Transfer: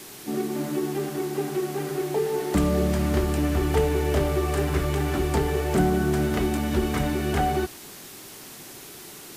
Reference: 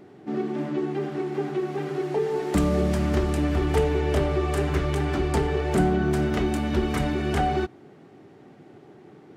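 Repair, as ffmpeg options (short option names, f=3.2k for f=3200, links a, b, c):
-af "afwtdn=0.0079"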